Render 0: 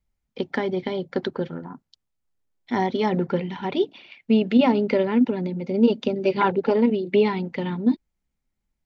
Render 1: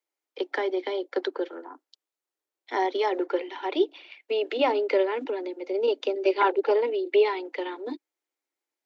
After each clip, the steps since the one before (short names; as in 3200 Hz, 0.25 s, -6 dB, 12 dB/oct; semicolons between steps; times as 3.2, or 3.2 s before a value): steep high-pass 290 Hz 96 dB/oct; gain -1 dB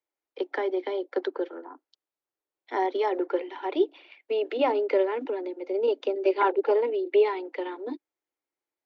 high shelf 2800 Hz -10.5 dB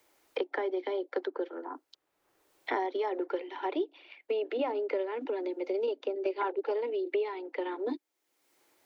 three-band squash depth 100%; gain -6.5 dB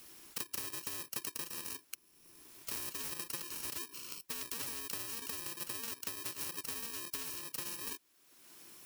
FFT order left unsorted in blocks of 64 samples; spectral compressor 4:1; gain -3 dB